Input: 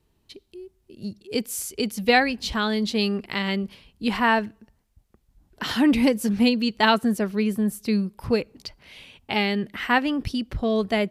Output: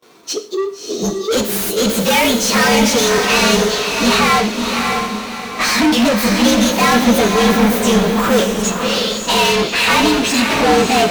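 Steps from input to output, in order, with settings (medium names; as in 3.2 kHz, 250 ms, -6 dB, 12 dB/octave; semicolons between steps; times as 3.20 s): frequency axis rescaled in octaves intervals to 113%; high-pass 280 Hz 12 dB/octave; bass shelf 440 Hz +5.5 dB; in parallel at -2.5 dB: gain riding within 3 dB; on the sum: overdrive pedal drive 35 dB, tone 5.1 kHz, clips at -6.5 dBFS; gate with hold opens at -35 dBFS; on a send: echo that smears into a reverb 605 ms, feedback 40%, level -4 dB; on the sum: gated-style reverb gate 170 ms falling, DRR 8 dB; trim -1.5 dB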